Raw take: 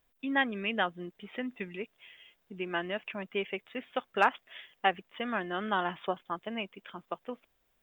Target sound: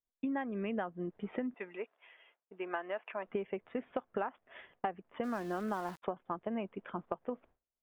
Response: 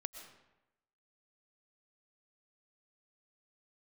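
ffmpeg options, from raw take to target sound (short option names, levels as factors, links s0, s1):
-filter_complex "[0:a]asettb=1/sr,asplit=3[s0][s1][s2];[s0]atrim=end=1.544[s3];[s1]atrim=start=1.54:end=3.27,asetpts=PTS-STARTPTS,afade=t=in:d=0.004:c=qsin,afade=t=out:st=1.726:d=0.004:c=qsin,highpass=650[s4];[s2]atrim=start=3.266[s5];[s3][s4]acrossfade=d=0.004:c1=hsin:c2=qsin[s6];[s6][s5]acrossfade=d=0.004:c1=qsin:c2=hsin,agate=range=0.0224:threshold=0.00158:ratio=3:detection=peak,lowpass=1100,acompressor=threshold=0.01:ratio=16,asplit=3[s7][s8][s9];[s7]afade=t=out:st=5.23:d=0.02[s10];[s8]aeval=exprs='val(0)*gte(abs(val(0)),0.00168)':c=same,afade=t=in:st=5.23:d=0.02,afade=t=out:st=6.02:d=0.02[s11];[s9]afade=t=in:st=6.02:d=0.02[s12];[s10][s11][s12]amix=inputs=3:normalize=0,volume=2.37"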